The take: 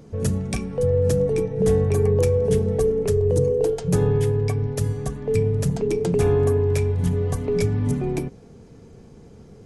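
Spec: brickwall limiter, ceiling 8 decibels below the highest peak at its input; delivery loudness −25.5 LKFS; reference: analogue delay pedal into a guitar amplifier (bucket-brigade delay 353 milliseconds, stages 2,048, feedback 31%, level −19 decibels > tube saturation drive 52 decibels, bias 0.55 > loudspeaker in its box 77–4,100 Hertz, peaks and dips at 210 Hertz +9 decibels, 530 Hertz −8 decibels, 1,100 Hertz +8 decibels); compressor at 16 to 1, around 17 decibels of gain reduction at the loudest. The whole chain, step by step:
downward compressor 16 to 1, threshold −32 dBFS
brickwall limiter −29 dBFS
bucket-brigade delay 353 ms, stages 2,048, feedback 31%, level −19 dB
tube saturation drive 52 dB, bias 0.55
loudspeaker in its box 77–4,100 Hz, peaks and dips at 210 Hz +9 dB, 530 Hz −8 dB, 1,100 Hz +8 dB
level +27.5 dB

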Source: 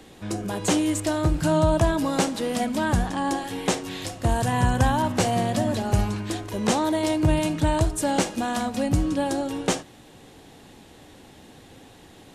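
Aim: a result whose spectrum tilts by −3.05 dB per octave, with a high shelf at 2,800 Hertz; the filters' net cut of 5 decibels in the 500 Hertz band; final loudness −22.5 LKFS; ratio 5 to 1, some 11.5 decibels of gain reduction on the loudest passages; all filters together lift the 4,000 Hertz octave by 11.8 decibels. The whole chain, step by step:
parametric band 500 Hz −7.5 dB
high-shelf EQ 2,800 Hz +8 dB
parametric band 4,000 Hz +8.5 dB
downward compressor 5 to 1, threshold −28 dBFS
level +8 dB

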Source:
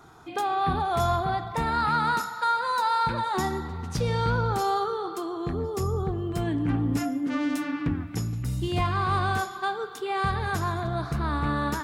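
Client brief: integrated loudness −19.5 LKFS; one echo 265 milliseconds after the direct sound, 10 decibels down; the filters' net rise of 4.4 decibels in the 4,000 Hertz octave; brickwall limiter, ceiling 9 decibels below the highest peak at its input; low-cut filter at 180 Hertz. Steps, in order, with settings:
high-pass filter 180 Hz
parametric band 4,000 Hz +5 dB
brickwall limiter −23 dBFS
single-tap delay 265 ms −10 dB
level +12 dB

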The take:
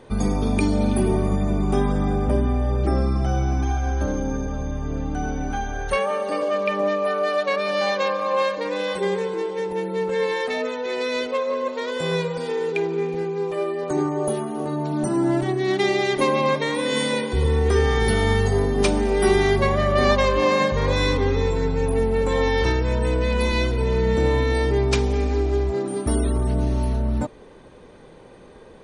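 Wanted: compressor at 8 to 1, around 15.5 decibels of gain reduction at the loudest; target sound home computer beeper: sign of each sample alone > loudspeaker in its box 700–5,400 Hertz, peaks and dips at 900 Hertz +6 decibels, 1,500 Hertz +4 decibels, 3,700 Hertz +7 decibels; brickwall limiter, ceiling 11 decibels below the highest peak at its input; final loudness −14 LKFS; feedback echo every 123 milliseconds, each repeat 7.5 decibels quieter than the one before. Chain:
downward compressor 8 to 1, threshold −31 dBFS
brickwall limiter −31 dBFS
repeating echo 123 ms, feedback 42%, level −7.5 dB
sign of each sample alone
loudspeaker in its box 700–5,400 Hz, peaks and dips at 900 Hz +6 dB, 1,500 Hz +4 dB, 3,700 Hz +7 dB
level +25 dB

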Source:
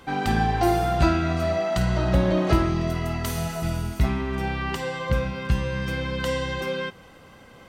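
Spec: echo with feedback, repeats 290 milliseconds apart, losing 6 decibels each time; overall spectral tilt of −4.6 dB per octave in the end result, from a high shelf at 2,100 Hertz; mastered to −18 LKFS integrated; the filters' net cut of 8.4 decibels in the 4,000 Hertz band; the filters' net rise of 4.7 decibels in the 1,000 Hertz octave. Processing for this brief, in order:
parametric band 1,000 Hz +8.5 dB
high-shelf EQ 2,100 Hz −5.5 dB
parametric band 4,000 Hz −6.5 dB
repeating echo 290 ms, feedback 50%, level −6 dB
level +4 dB

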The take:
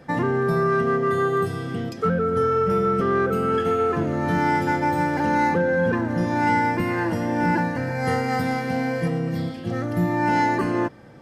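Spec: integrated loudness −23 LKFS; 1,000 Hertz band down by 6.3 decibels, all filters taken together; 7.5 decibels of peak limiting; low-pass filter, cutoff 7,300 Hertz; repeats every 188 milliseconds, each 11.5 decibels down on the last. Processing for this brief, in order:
low-pass filter 7,300 Hz
parametric band 1,000 Hz −8 dB
brickwall limiter −20.5 dBFS
repeating echo 188 ms, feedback 27%, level −11.5 dB
level +5.5 dB

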